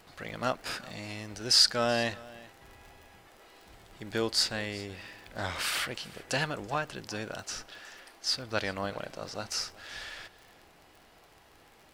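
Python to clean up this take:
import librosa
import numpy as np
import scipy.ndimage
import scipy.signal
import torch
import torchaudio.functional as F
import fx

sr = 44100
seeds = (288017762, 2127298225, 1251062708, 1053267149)

y = fx.fix_declick_ar(x, sr, threshold=6.5)
y = fx.fix_echo_inverse(y, sr, delay_ms=378, level_db=-20.5)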